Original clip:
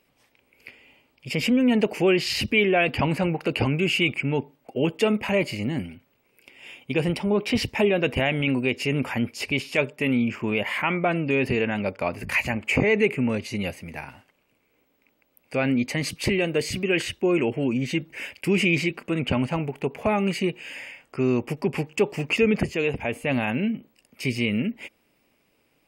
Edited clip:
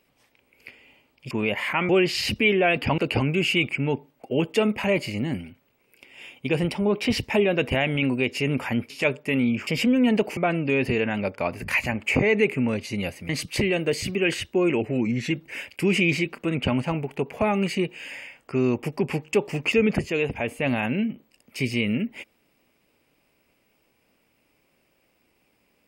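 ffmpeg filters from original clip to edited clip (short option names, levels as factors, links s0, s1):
-filter_complex "[0:a]asplit=10[s0][s1][s2][s3][s4][s5][s6][s7][s8][s9];[s0]atrim=end=1.312[s10];[s1]atrim=start=10.398:end=10.982[s11];[s2]atrim=start=2.008:end=3.102[s12];[s3]atrim=start=3.428:end=9.352[s13];[s4]atrim=start=9.628:end=10.402[s14];[s5]atrim=start=1.308:end=2.012[s15];[s6]atrim=start=10.978:end=13.902[s16];[s7]atrim=start=15.968:end=17.494[s17];[s8]atrim=start=17.49:end=17.95,asetpts=PTS-STARTPTS,asetrate=41013,aresample=44100[s18];[s9]atrim=start=17.946[s19];[s10][s11]acrossfade=d=0.004:c1=hsin:c2=hsin[s20];[s20][s12]acrossfade=d=0.004:c1=hsin:c2=hsin[s21];[s21][s13]acrossfade=d=0.004:c1=hsin:c2=hsin[s22];[s22][s14]acrossfade=d=0.004:c1=hsin:c2=hsin[s23];[s23][s15]acrossfade=d=0.004:c1=hsin:c2=hsin[s24];[s24][s16]acrossfade=d=0.004:c1=hsin:c2=hsin[s25];[s25][s17]acrossfade=d=0.004:c1=hsin:c2=hsin[s26];[s26][s18]acrossfade=d=0.004:c1=hsin:c2=hsin[s27];[s27][s19]acrossfade=d=0.004:c1=hsin:c2=hsin"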